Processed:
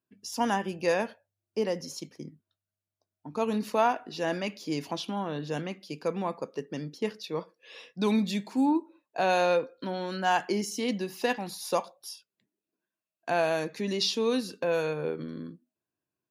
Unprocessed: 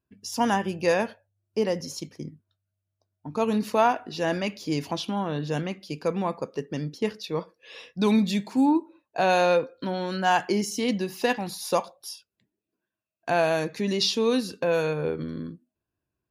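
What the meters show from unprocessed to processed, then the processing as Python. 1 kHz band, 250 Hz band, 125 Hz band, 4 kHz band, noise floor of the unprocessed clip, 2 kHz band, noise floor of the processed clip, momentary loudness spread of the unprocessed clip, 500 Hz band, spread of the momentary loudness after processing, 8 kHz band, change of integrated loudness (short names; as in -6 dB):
-3.5 dB, -4.5 dB, -6.0 dB, -3.5 dB, under -85 dBFS, -3.5 dB, under -85 dBFS, 14 LU, -3.5 dB, 14 LU, -3.5 dB, -4.0 dB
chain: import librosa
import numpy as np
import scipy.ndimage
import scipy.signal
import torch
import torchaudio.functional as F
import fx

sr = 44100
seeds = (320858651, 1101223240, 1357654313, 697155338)

y = scipy.signal.sosfilt(scipy.signal.butter(2, 160.0, 'highpass', fs=sr, output='sos'), x)
y = F.gain(torch.from_numpy(y), -3.5).numpy()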